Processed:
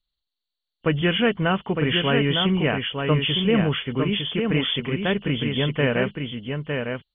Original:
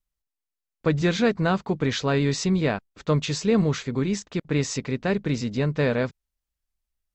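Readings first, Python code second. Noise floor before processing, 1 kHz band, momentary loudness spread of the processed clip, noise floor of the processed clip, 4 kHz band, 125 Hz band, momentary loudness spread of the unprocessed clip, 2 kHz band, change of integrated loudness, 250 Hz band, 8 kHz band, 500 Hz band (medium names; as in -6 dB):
under -85 dBFS, +2.5 dB, 8 LU, -85 dBFS, +10.0 dB, +1.0 dB, 6 LU, +5.5 dB, +2.0 dB, +1.5 dB, under -40 dB, +1.5 dB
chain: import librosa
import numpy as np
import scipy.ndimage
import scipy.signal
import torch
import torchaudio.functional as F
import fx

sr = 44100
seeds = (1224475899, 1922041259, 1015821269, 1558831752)

p1 = fx.freq_compress(x, sr, knee_hz=2700.0, ratio=4.0)
p2 = fx.dynamic_eq(p1, sr, hz=2400.0, q=0.89, threshold_db=-42.0, ratio=4.0, max_db=5)
y = p2 + fx.echo_single(p2, sr, ms=907, db=-5.0, dry=0)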